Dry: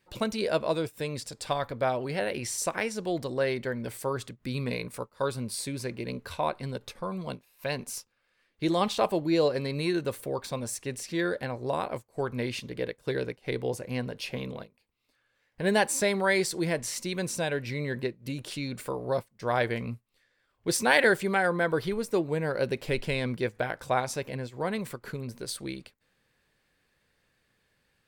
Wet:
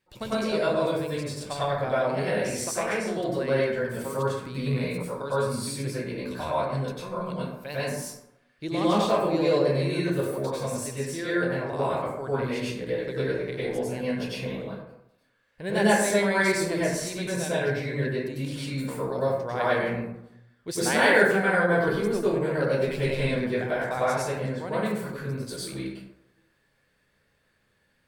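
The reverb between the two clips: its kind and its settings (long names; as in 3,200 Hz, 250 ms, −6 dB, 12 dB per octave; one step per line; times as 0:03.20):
dense smooth reverb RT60 0.85 s, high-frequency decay 0.45×, pre-delay 85 ms, DRR −9 dB
level −6.5 dB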